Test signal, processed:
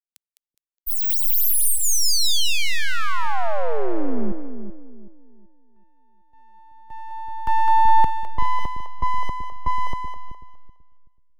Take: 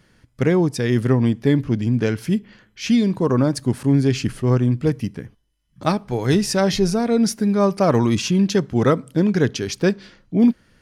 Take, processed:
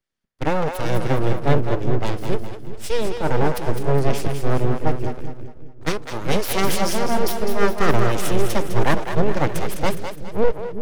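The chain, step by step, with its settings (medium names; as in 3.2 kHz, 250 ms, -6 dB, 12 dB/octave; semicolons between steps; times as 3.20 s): band-stop 3.9 kHz, Q 10; full-wave rectifier; two-band feedback delay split 450 Hz, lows 379 ms, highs 207 ms, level -5 dB; three bands expanded up and down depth 70%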